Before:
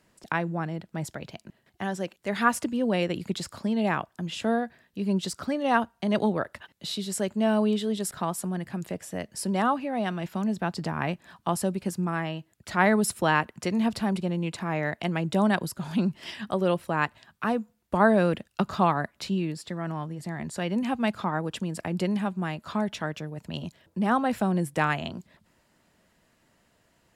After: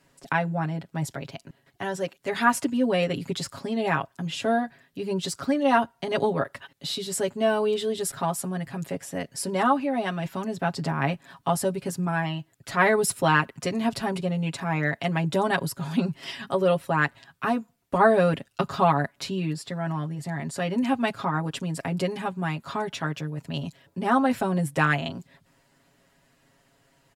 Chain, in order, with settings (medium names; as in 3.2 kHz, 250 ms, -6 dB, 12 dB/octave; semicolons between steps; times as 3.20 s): comb 7.3 ms, depth 93%